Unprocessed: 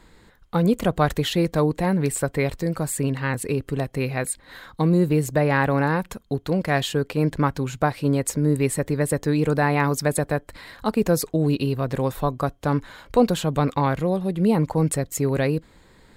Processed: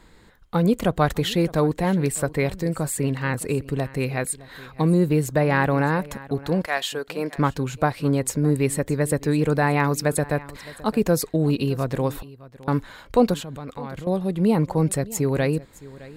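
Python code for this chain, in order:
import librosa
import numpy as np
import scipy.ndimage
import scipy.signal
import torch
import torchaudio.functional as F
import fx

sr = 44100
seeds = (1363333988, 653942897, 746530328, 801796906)

p1 = fx.highpass(x, sr, hz=fx.line((6.65, 750.0), (7.37, 340.0)), slope=12, at=(6.65, 7.37), fade=0.02)
p2 = fx.gate_flip(p1, sr, shuts_db=-27.0, range_db=-41, at=(12.22, 12.68))
p3 = fx.level_steps(p2, sr, step_db=17, at=(13.34, 14.07))
y = p3 + fx.echo_single(p3, sr, ms=613, db=-19.5, dry=0)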